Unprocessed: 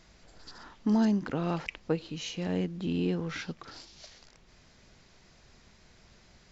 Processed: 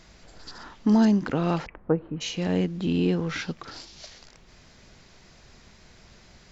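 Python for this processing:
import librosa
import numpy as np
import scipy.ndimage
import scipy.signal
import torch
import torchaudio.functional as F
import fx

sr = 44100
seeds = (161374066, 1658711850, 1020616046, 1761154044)

y = fx.lowpass(x, sr, hz=1500.0, slope=24, at=(1.65, 2.2), fade=0.02)
y = F.gain(torch.from_numpy(y), 6.0).numpy()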